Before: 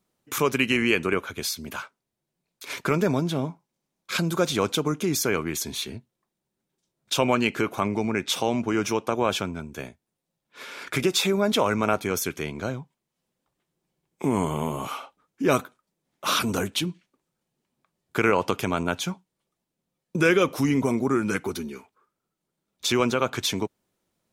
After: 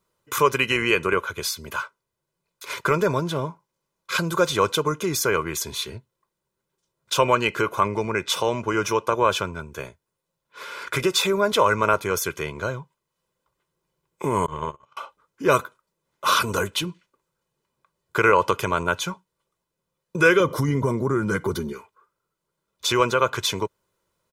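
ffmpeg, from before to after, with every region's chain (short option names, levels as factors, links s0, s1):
-filter_complex "[0:a]asettb=1/sr,asplit=3[s0][s1][s2];[s0]atrim=end=14.464[s3];[s1]atrim=start=14.46:end=14.97,asetpts=PTS-STARTPTS,afade=t=in:d=0.004:c=qsin,afade=t=out:st=0.506:d=0.004:c=qsin,lowpass=f=6700:w=0.5412,lowpass=f=6700:w=1.3066,bandreject=f=47.17:t=h:w=4,bandreject=f=94.34:t=h:w=4,bandreject=f=141.51:t=h:w=4,bandreject=f=188.68:t=h:w=4,bandreject=f=235.85:t=h:w=4,bandreject=f=283.02:t=h:w=4,bandreject=f=330.19:t=h:w=4,bandreject=f=377.36:t=h:w=4,bandreject=f=424.53:t=h:w=4,bandreject=f=471.7:t=h:w=4,bandreject=f=518.87:t=h:w=4,bandreject=f=566.04:t=h:w=4,bandreject=f=613.21:t=h:w=4,bandreject=f=660.38:t=h:w=4,bandreject=f=707.55:t=h:w=4,bandreject=f=754.72:t=h:w=4,bandreject=f=801.89:t=h:w=4,bandreject=f=849.06:t=h:w=4,agate=range=0.0141:threshold=0.0398:ratio=16:release=100:detection=peak[s4];[s2]atrim=start=14.966[s5];[s3][s4]acrossfade=d=0.004:c1=hsin:c2=qsin[s6];[s6][s5]acrossfade=d=0.004:c1=qsin:c2=hsin,asettb=1/sr,asplit=3[s7][s8][s9];[s7]atrim=end=20.404[s10];[s8]atrim=start=20.4:end=21.73,asetpts=PTS-STARTPTS,afade=t=in:d=0.004:c=qsin,afade=t=out:st=1.326:d=0.004:c=qsin,equalizer=f=150:w=0.46:g=11,acompressor=threshold=0.0891:ratio=2:attack=3.2:release=140:knee=1:detection=peak,asuperstop=centerf=2600:order=4:qfactor=5.9[s11];[s9]atrim=start=21.726[s12];[s10][s11]acrossfade=d=0.004:c1=hsin:c2=qsin[s13];[s13][s12]acrossfade=d=0.004:c1=qsin:c2=hsin,equalizer=f=1200:w=2.8:g=8.5,aecho=1:1:2:0.6"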